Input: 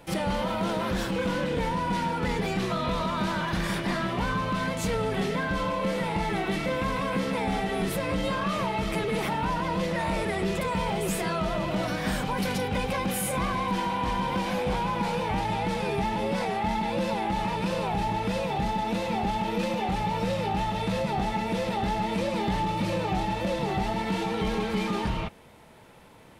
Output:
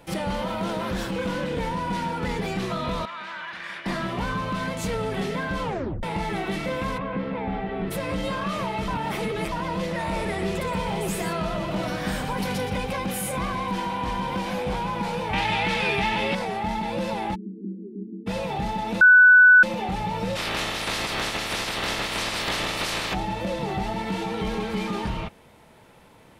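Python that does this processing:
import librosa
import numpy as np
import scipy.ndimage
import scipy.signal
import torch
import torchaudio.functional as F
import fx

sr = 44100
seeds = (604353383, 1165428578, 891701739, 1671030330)

y = fx.bandpass_q(x, sr, hz=2000.0, q=1.3, at=(3.05, 3.86))
y = fx.air_absorb(y, sr, metres=440.0, at=(6.97, 7.9), fade=0.02)
y = fx.echo_single(y, sr, ms=121, db=-8.5, at=(10.12, 12.75), fade=0.02)
y = fx.peak_eq(y, sr, hz=2600.0, db=13.0, octaves=1.9, at=(15.33, 16.35))
y = fx.cheby1_bandpass(y, sr, low_hz=190.0, high_hz=410.0, order=5, at=(17.34, 18.26), fade=0.02)
y = fx.spec_clip(y, sr, under_db=28, at=(20.35, 23.13), fade=0.02)
y = fx.edit(y, sr, fx.tape_stop(start_s=5.63, length_s=0.4),
    fx.reverse_span(start_s=8.88, length_s=0.64),
    fx.bleep(start_s=19.01, length_s=0.62, hz=1490.0, db=-9.0), tone=tone)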